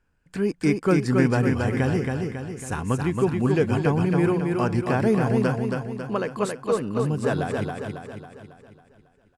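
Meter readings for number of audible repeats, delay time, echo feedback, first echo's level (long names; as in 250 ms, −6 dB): 6, 274 ms, 51%, −4.0 dB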